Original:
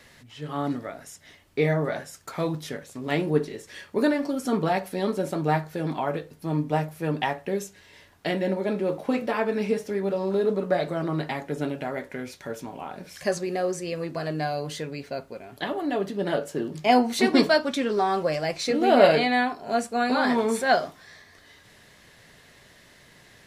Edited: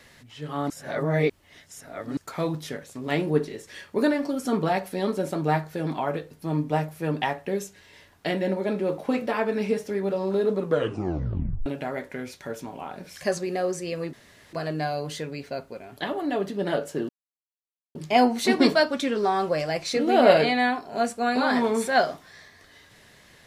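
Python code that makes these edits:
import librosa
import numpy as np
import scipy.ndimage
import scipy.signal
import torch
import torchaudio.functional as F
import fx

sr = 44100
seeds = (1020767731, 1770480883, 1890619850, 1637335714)

y = fx.edit(x, sr, fx.reverse_span(start_s=0.7, length_s=1.47),
    fx.tape_stop(start_s=10.59, length_s=1.07),
    fx.insert_room_tone(at_s=14.13, length_s=0.4),
    fx.insert_silence(at_s=16.69, length_s=0.86), tone=tone)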